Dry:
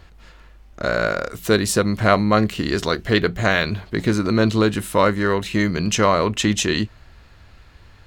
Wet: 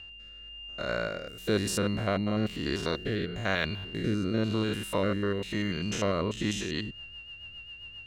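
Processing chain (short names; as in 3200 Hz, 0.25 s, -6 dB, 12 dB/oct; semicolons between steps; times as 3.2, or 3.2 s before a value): stepped spectrum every 0.1 s; whine 2800 Hz -33 dBFS; rotary speaker horn 1 Hz, later 7.5 Hz, at 6.29; gain -7 dB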